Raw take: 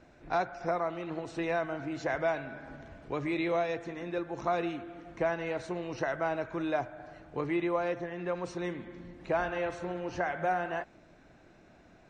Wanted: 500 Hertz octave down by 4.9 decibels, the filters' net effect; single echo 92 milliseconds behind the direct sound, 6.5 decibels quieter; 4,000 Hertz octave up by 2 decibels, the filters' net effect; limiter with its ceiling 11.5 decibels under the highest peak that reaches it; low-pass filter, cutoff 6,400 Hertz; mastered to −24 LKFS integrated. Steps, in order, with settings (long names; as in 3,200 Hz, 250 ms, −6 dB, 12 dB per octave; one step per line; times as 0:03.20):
low-pass filter 6,400 Hz
parametric band 500 Hz −7 dB
parametric band 4,000 Hz +3 dB
brickwall limiter −31.5 dBFS
single-tap delay 92 ms −6.5 dB
level +17 dB